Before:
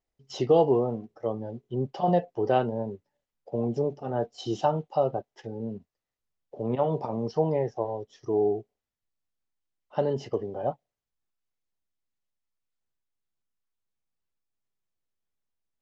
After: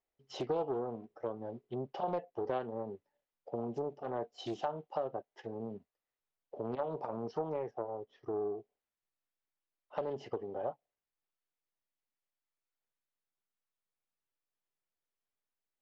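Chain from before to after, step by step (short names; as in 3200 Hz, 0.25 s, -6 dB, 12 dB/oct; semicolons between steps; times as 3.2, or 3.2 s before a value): tone controls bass -10 dB, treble -10 dB; compressor 2.5:1, threshold -34 dBFS, peak gain reduction 11.5 dB; 7.71–8.58 air absorption 230 m; Doppler distortion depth 0.41 ms; gain -2 dB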